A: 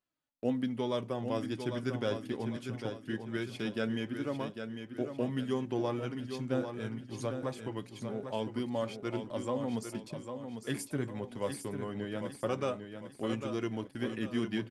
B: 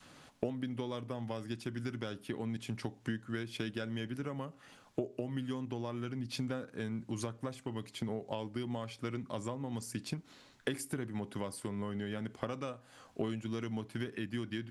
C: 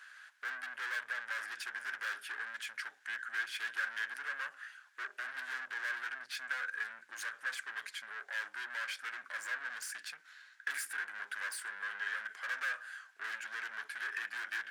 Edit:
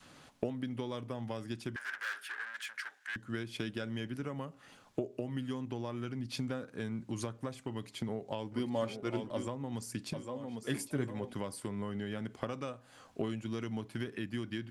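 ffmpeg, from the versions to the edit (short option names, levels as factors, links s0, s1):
-filter_complex "[0:a]asplit=2[s0][s1];[1:a]asplit=4[s2][s3][s4][s5];[s2]atrim=end=1.762[s6];[2:a]atrim=start=1.758:end=3.162[s7];[s3]atrim=start=3.158:end=8.522[s8];[s0]atrim=start=8.518:end=9.472[s9];[s4]atrim=start=9.468:end=10.132[s10];[s1]atrim=start=10.128:end=11.332[s11];[s5]atrim=start=11.328[s12];[s6][s7]acrossfade=d=0.004:c1=hsin:c2=hsin[s13];[s13][s8]acrossfade=d=0.004:c1=hsin:c2=hsin[s14];[s14][s9]acrossfade=d=0.004:c1=hsin:c2=hsin[s15];[s15][s10]acrossfade=d=0.004:c1=hsin:c2=hsin[s16];[s16][s11]acrossfade=d=0.004:c1=hsin:c2=hsin[s17];[s17][s12]acrossfade=d=0.004:c1=hsin:c2=hsin"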